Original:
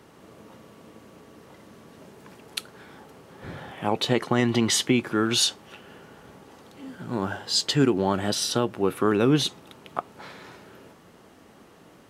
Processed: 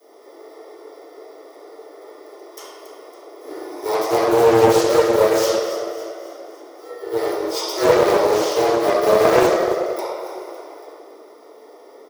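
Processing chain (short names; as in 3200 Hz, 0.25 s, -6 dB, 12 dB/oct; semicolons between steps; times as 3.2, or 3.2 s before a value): FFT order left unsorted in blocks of 32 samples; bell 2300 Hz -12.5 dB 0.49 oct; frequency shift +220 Hz; frequency-shifting echo 0.279 s, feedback 51%, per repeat +36 Hz, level -12.5 dB; reverb RT60 2.1 s, pre-delay 4 ms, DRR -17 dB; Doppler distortion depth 0.39 ms; gain -9 dB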